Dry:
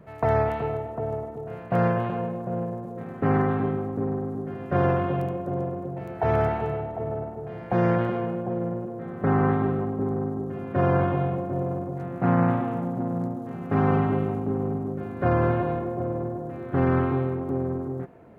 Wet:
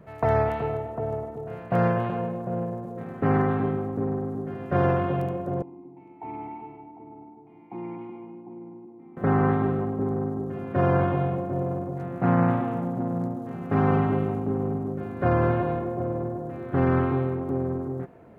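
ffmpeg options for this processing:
-filter_complex "[0:a]asettb=1/sr,asplit=3[a][b][c];[a]atrim=end=5.624[d];[b]atrim=start=5.62:end=9.17,asetpts=PTS-STARTPTS,afade=t=in:d=0.004:c=qsin,afade=t=out:st=3.546:d=0.004:c=qsin,asplit=3[e][f][g];[e]bandpass=f=300:t=q:w=8,volume=0dB[h];[f]bandpass=f=870:t=q:w=8,volume=-6dB[i];[g]bandpass=f=2.24k:t=q:w=8,volume=-9dB[j];[h][i][j]amix=inputs=3:normalize=0[k];[c]atrim=start=9.166[l];[d][k]acrossfade=d=0.004:c1=hsin:c2=qsin[m];[m][l]acrossfade=d=0.004:c1=qsin:c2=hsin"

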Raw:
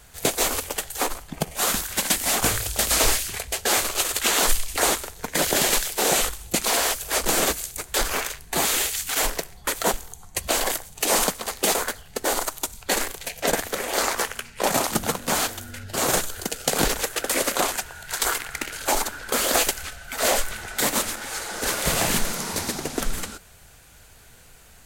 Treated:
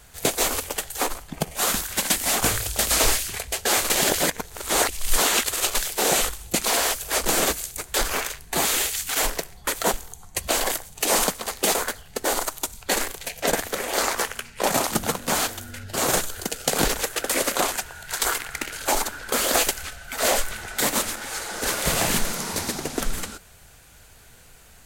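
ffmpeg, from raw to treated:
-filter_complex "[0:a]asplit=3[a][b][c];[a]atrim=end=3.902[d];[b]atrim=start=3.898:end=5.752,asetpts=PTS-STARTPTS,areverse[e];[c]atrim=start=5.748[f];[d][e]acrossfade=d=0.004:c1=hsin:c2=hsin[g];[g][f]acrossfade=d=0.004:c1=hsin:c2=hsin"

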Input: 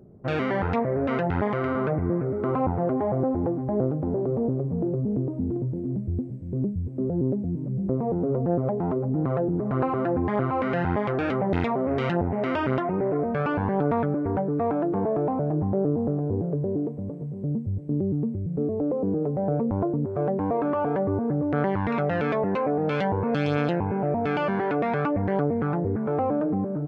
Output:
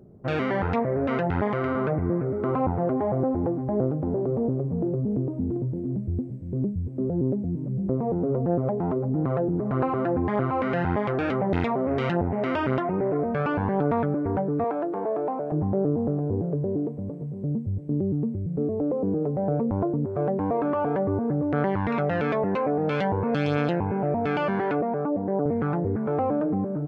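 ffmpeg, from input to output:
-filter_complex "[0:a]asettb=1/sr,asplit=3[a][b][c];[a]atrim=end=14.644[d];[b]atrim=start=14.64:end=15.52,asetpts=PTS-STARTPTS,afade=t=in:d=0.004:c=qsin,afade=t=out:st=0.876:d=0.004:c=qsin,highpass=370[e];[c]atrim=start=15.516[f];[d][e]acrossfade=d=0.004:c1=hsin:c2=qsin[g];[g][f]acrossfade=d=0.004:c1=qsin:c2=hsin,asettb=1/sr,asplit=3[h][i][j];[h]atrim=end=24.814[k];[i]atrim=start=24.81:end=25.46,asetpts=PTS-STARTPTS,afade=t=in:d=0.004:c=qsin,afade=t=out:st=0.646:d=0.004:c=qsin,asuperpass=centerf=380:order=4:qfactor=0.57[l];[j]atrim=start=25.456[m];[k][l]acrossfade=d=0.004:c1=hsin:c2=qsin[n];[n][m]acrossfade=d=0.004:c1=qsin:c2=hsin"

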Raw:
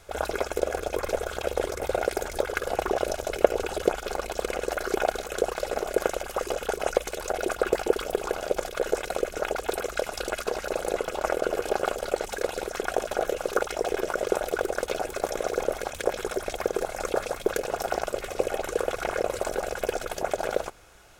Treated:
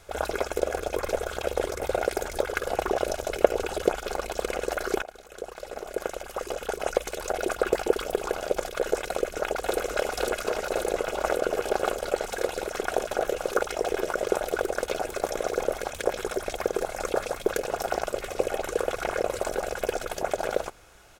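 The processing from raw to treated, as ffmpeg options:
-filter_complex "[0:a]asplit=2[a][b];[b]afade=t=in:st=9.09:d=0.01,afade=t=out:st=9.74:d=0.01,aecho=0:1:540|1080|1620|2160|2700|3240|3780|4320|4860|5400|5940|6480:0.707946|0.566357|0.453085|0.362468|0.289975|0.23198|0.185584|0.148467|0.118774|0.0950189|0.0760151|0.0608121[c];[a][c]amix=inputs=2:normalize=0,asplit=2[d][e];[d]atrim=end=5.02,asetpts=PTS-STARTPTS,afade=t=out:st=5.016:d=0.004:c=hsin:silence=0.112202[f];[e]atrim=start=5.02,asetpts=PTS-STARTPTS,afade=t=in:d=2.24:silence=0.112202[g];[f][g]concat=n=2:v=0:a=1"

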